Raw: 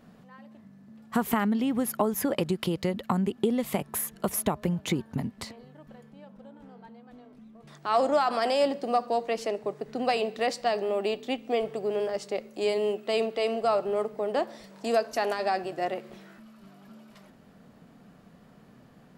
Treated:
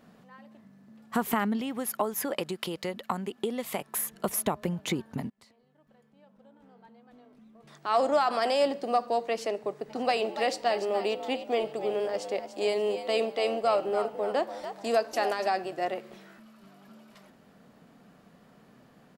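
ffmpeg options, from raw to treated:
-filter_complex "[0:a]asettb=1/sr,asplit=3[a][b][c];[a]atrim=end=1.614[d];[b]atrim=start=1.61:end=3.98,asetpts=PTS-STARTPTS,afade=t=in:d=0.004:c=qsin,afade=t=out:st=2.366:d=0.004:c=qsin,lowshelf=f=340:g=-8.5[e];[c]atrim=start=3.976[f];[d][e]acrossfade=d=0.004:c1=hsin:c2=qsin[g];[g][f]acrossfade=d=0.004:c1=qsin:c2=hsin,asplit=3[h][i][j];[h]afade=t=out:st=9.89:d=0.02[k];[i]asplit=4[l][m][n][o];[m]adelay=290,afreqshift=93,volume=-10.5dB[p];[n]adelay=580,afreqshift=186,volume=-20.7dB[q];[o]adelay=870,afreqshift=279,volume=-30.8dB[r];[l][p][q][r]amix=inputs=4:normalize=0,afade=t=in:st=9.89:d=0.02,afade=t=out:st=15.47:d=0.02[s];[j]afade=t=in:st=15.47:d=0.02[t];[k][s][t]amix=inputs=3:normalize=0,asplit=2[u][v];[u]atrim=end=5.3,asetpts=PTS-STARTPTS,afade=t=out:st=5.296:d=0.004:c=hsin:silence=0.0668344[w];[v]atrim=start=5.3,asetpts=PTS-STARTPTS,afade=t=in:d=2.81:silence=0.0668344[x];[w][x]concat=n=2:v=0:a=1,lowshelf=f=160:g=-8.5"

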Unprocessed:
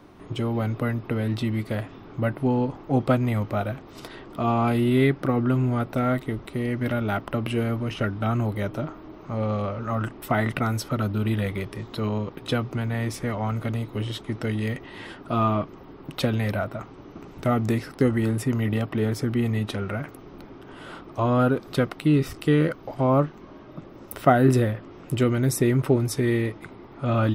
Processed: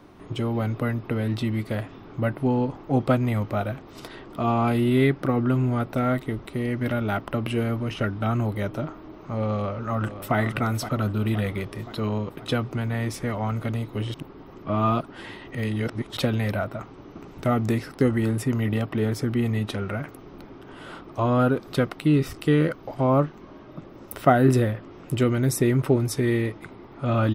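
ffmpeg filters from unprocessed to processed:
-filter_complex "[0:a]asplit=2[a][b];[b]afade=t=in:st=9.5:d=0.01,afade=t=out:st=10.36:d=0.01,aecho=0:1:520|1040|1560|2080|2600|3120|3640:0.281838|0.169103|0.101462|0.0608771|0.0365262|0.0219157|0.0131494[c];[a][c]amix=inputs=2:normalize=0,asplit=3[d][e][f];[d]atrim=end=14.142[g];[e]atrim=start=14.138:end=16.172,asetpts=PTS-STARTPTS,areverse[h];[f]atrim=start=16.168[i];[g][h]acrossfade=d=0.004:c1=hsin:c2=hsin[j];[j][i]acrossfade=d=0.004:c1=hsin:c2=hsin"

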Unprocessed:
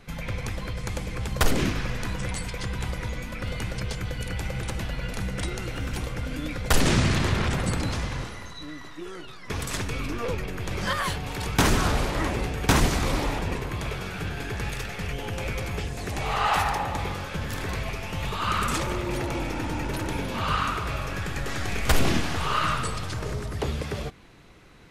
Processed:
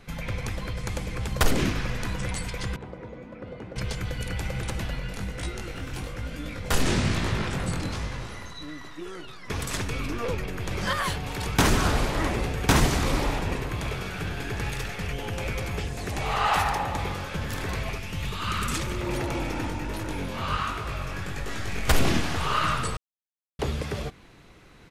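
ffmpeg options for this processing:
-filter_complex "[0:a]asettb=1/sr,asplit=3[a][b][c];[a]atrim=end=2.764[d];[b]atrim=start=2.76:end=3.76,asetpts=PTS-STARTPTS,afade=t=in:d=0.004:c=qsin,afade=t=out:st=0.996:d=0.004:c=qsin,bandpass=f=400:t=q:w=1[e];[c]atrim=start=3.756[f];[d][e]acrossfade=d=0.004:c1=hsin:c2=qsin[g];[g][f]acrossfade=d=0.004:c1=qsin:c2=hsin,asplit=3[h][i][j];[h]afade=t=out:st=4.98:d=0.02[k];[i]flanger=delay=17.5:depth=5.7:speed=1.1,afade=t=in:st=4.98:d=0.02,afade=t=out:st=8.28:d=0.02[l];[j]afade=t=in:st=8.28:d=0.02[m];[k][l][m]amix=inputs=3:normalize=0,asplit=3[n][o][p];[n]afade=t=out:st=11.79:d=0.02[q];[o]aecho=1:1:68|136|204|272|340:0.251|0.113|0.0509|0.0229|0.0103,afade=t=in:st=11.79:d=0.02,afade=t=out:st=14.93:d=0.02[r];[p]afade=t=in:st=14.93:d=0.02[s];[q][r][s]amix=inputs=3:normalize=0,asettb=1/sr,asplit=3[t][u][v];[t]atrim=end=17.984[w];[u]atrim=start=17.98:end=19.01,asetpts=PTS-STARTPTS,afade=t=in:d=0.004:c=qsin,afade=t=out:st=1.026:d=0.004:c=qsin,equalizer=f=750:w=0.79:g=-8[x];[v]atrim=start=19.006[y];[w][x]acrossfade=d=0.004:c1=hsin:c2=qsin[z];[z][y]acrossfade=d=0.004:c1=qsin:c2=hsin,asplit=3[aa][ab][ac];[aa]afade=t=out:st=19.69:d=0.02[ad];[ab]flanger=delay=18.5:depth=4.3:speed=1.3,afade=t=in:st=19.69:d=0.02,afade=t=out:st=21.87:d=0.02[ae];[ac]afade=t=in:st=21.87:d=0.02[af];[ad][ae][af]amix=inputs=3:normalize=0,asplit=3[ag][ah][ai];[ag]atrim=end=22.97,asetpts=PTS-STARTPTS,afade=t=out:st=22.966:d=0.004:c=hsin[aj];[ah]atrim=start=22.97:end=23.59,asetpts=PTS-STARTPTS,volume=0[ak];[ai]atrim=start=23.59,asetpts=PTS-STARTPTS,afade=t=in:d=0.004:c=hsin[al];[aj][ak][al]concat=n=3:v=0:a=1"

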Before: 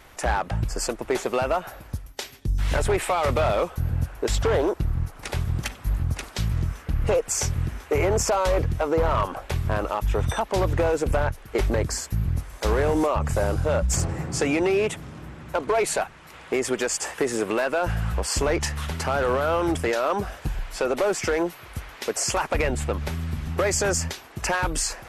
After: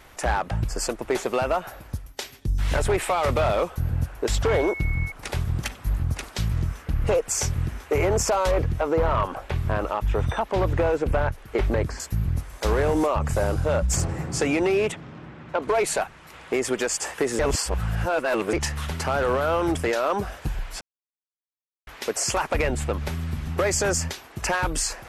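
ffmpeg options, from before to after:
-filter_complex "[0:a]asettb=1/sr,asplit=3[a][b][c];[a]atrim=end=4.494[d];[b]atrim=start=4.49:end=5.12,asetpts=PTS-STARTPTS,afade=t=in:d=0.004:c=qsin,afade=t=out:st=0.626:d=0.004:c=qsin,aeval=exprs='val(0)+0.0251*sin(2*PI*2200*n/s)':c=same[e];[c]atrim=start=5.116[f];[d][e]acrossfade=d=0.004:c1=hsin:c2=qsin[g];[g][f]acrossfade=d=0.004:c1=qsin:c2=hsin,asettb=1/sr,asplit=3[h][i][j];[h]atrim=end=8.514[k];[i]atrim=start=8.51:end=12,asetpts=PTS-STARTPTS,afade=t=in:d=0.004:c=qsin,afade=t=out:st=3.486:d=0.004:c=qsin,acrossover=split=3700[l][m];[m]acompressor=threshold=-52dB:ratio=4:attack=1:release=60[n];[l][n]amix=inputs=2:normalize=0[o];[j]atrim=start=11.996[p];[k][o]acrossfade=d=0.004:c1=hsin:c2=qsin[q];[q][p]acrossfade=d=0.004:c1=qsin:c2=hsin,asettb=1/sr,asplit=3[r][s][t];[r]atrim=end=14.924[u];[s]atrim=start=14.92:end=15.62,asetpts=PTS-STARTPTS,afade=t=in:d=0.004:c=qsin,afade=t=out:st=0.696:d=0.004:c=qsin,highpass=110,lowpass=3.8k[v];[t]atrim=start=15.616[w];[u][v]acrossfade=d=0.004:c1=hsin:c2=qsin[x];[x][w]acrossfade=d=0.004:c1=qsin:c2=hsin,asplit=5[y][z][aa][ab][ac];[y]atrim=end=17.392[ad];[z]atrim=start=17.388:end=18.532,asetpts=PTS-STARTPTS,areverse[ae];[aa]atrim=start=18.528:end=20.81,asetpts=PTS-STARTPTS,afade=t=out:st=2.278:d=0.004:c=hsin[af];[ab]atrim=start=20.81:end=21.87,asetpts=PTS-STARTPTS,volume=0[ag];[ac]atrim=start=21.87,asetpts=PTS-STARTPTS,afade=t=in:d=0.004:c=hsin[ah];[ad][ae]acrossfade=d=0.004:c1=hsin:c2=hsin[ai];[af][ag][ah]concat=n=3:v=0:a=1[aj];[ai][aj]acrossfade=d=0.004:c1=hsin:c2=hsin"

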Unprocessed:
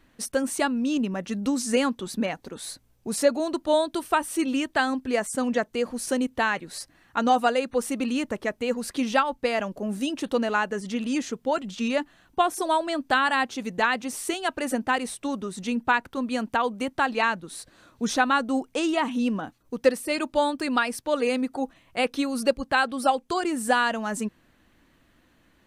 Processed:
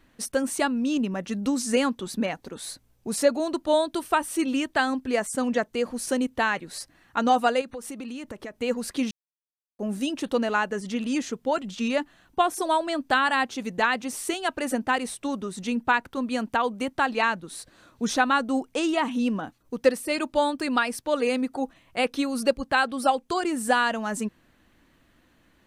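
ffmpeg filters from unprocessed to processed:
-filter_complex "[0:a]asettb=1/sr,asplit=3[a][b][c];[a]atrim=end=7.614[d];[b]atrim=start=7.61:end=8.56,asetpts=PTS-STARTPTS,afade=t=in:d=0.004:c=qsin,afade=t=out:st=0.946:d=0.004:c=qsin,acompressor=threshold=-33dB:ratio=6:attack=3.2:release=140:knee=1:detection=peak[e];[c]atrim=start=8.556[f];[d][e]acrossfade=d=0.004:c1=hsin:c2=qsin[g];[g][f]acrossfade=d=0.004:c1=qsin:c2=hsin,asplit=3[h][i][j];[h]atrim=end=9.11,asetpts=PTS-STARTPTS,afade=t=out:st=9.106:d=0.004:c=hsin[k];[i]atrim=start=9.11:end=9.79,asetpts=PTS-STARTPTS,volume=0[l];[j]atrim=start=9.79,asetpts=PTS-STARTPTS,afade=t=in:d=0.004:c=hsin[m];[k][l][m]concat=n=3:v=0:a=1"

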